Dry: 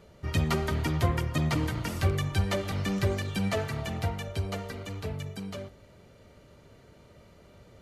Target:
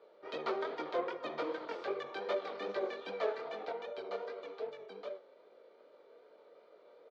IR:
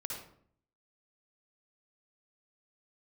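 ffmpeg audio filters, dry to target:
-af "flanger=delay=18.5:depth=7.1:speed=2.3,atempo=1.1,highpass=f=380:w=0.5412,highpass=f=380:w=1.3066,equalizer=f=480:t=q:w=4:g=8,equalizer=f=1.9k:t=q:w=4:g=-7,equalizer=f=2.8k:t=q:w=4:g=-10,lowpass=f=3.7k:w=0.5412,lowpass=f=3.7k:w=1.3066,volume=-1dB"

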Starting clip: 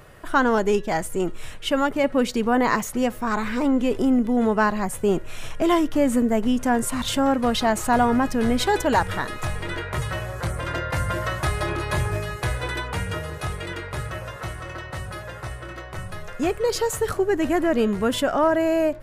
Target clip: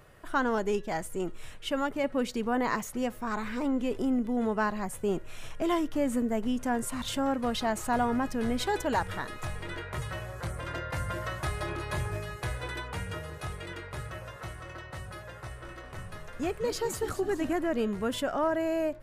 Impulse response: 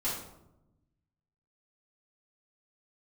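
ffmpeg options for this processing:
-filter_complex "[0:a]asettb=1/sr,asplit=3[a][b][c];[a]atrim=end=15.354[d];[b]atrim=start=15.35:end=17.53,asetpts=PTS-STARTPTS,afade=t=in:d=0.004:c=qsin,afade=t=out:st=2.176:d=0.004:c=qsin,asplit=7[e][f][g][h][i][j][k];[f]adelay=209,afreqshift=-90,volume=-10dB[l];[g]adelay=418,afreqshift=-180,volume=-15.8dB[m];[h]adelay=627,afreqshift=-270,volume=-21.7dB[n];[i]adelay=836,afreqshift=-360,volume=-27.5dB[o];[j]adelay=1045,afreqshift=-450,volume=-33.4dB[p];[k]adelay=1254,afreqshift=-540,volume=-39.2dB[q];[e][l][m][n][o][p][q]amix=inputs=7:normalize=0,atrim=end_sample=96138[r];[c]atrim=start=17.526[s];[d][r]acrossfade=d=0.004:c1=hsin:c2=qsin[t];[t][s]acrossfade=d=0.004:c1=qsin:c2=hsin,volume=-8.5dB"

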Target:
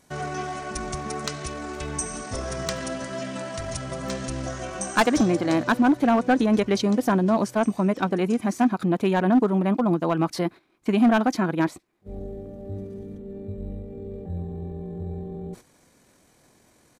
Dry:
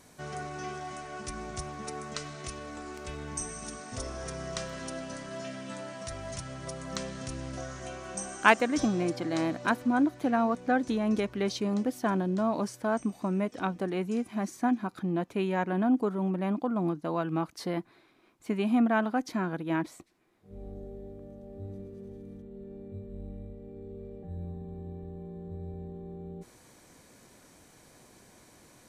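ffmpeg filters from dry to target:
-af "agate=range=-10dB:threshold=-53dB:ratio=16:detection=peak,asoftclip=type=hard:threshold=-21dB,atempo=1.7,volume=8dB"

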